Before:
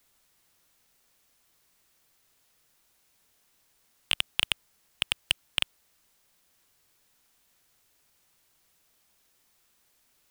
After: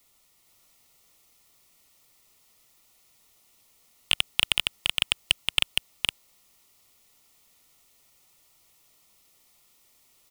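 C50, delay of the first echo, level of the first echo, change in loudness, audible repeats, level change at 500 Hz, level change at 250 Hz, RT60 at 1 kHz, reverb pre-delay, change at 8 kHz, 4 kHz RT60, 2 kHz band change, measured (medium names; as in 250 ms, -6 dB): no reverb, 465 ms, -3.0 dB, +4.0 dB, 1, +4.5 dB, +4.0 dB, no reverb, no reverb, +6.0 dB, no reverb, +5.0 dB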